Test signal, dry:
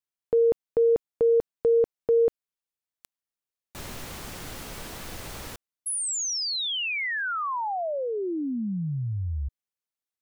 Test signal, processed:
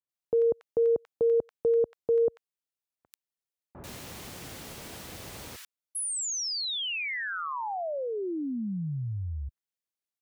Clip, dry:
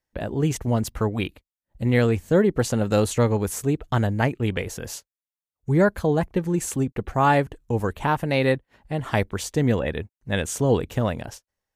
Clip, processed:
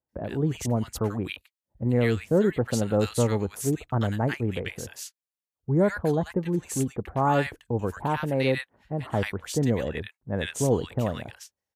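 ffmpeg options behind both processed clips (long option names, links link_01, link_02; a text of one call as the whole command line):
ffmpeg -i in.wav -filter_complex "[0:a]highpass=65,acrossover=split=1300[link_01][link_02];[link_02]adelay=90[link_03];[link_01][link_03]amix=inputs=2:normalize=0,volume=-3dB" out.wav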